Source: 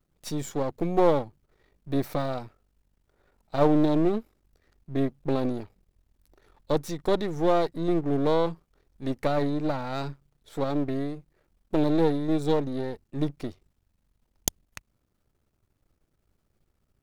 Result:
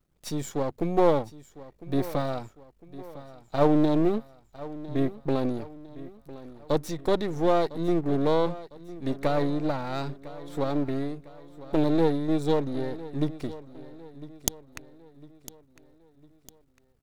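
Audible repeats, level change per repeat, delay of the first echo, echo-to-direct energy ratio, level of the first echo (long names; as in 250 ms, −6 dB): 3, −7.0 dB, 1,004 ms, −16.0 dB, −17.0 dB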